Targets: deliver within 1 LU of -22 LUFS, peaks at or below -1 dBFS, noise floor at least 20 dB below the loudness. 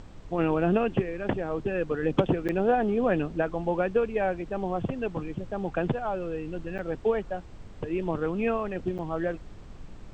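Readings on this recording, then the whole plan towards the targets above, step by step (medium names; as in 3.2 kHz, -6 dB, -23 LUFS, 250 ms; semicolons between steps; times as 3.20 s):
dropouts 3; longest dropout 7.8 ms; noise floor -45 dBFS; noise floor target -49 dBFS; loudness -29.0 LUFS; peak level -11.0 dBFS; loudness target -22.0 LUFS
-> interpolate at 2.48/6.78/8.98 s, 7.8 ms; noise print and reduce 6 dB; trim +7 dB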